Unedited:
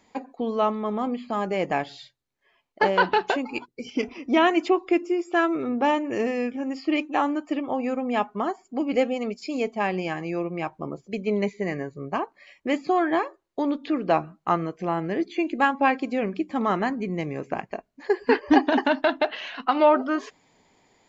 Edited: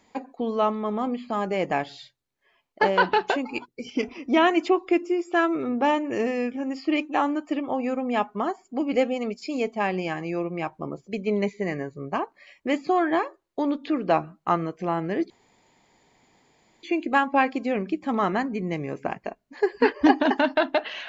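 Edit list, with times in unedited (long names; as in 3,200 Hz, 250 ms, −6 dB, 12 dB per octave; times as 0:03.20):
0:15.30: splice in room tone 1.53 s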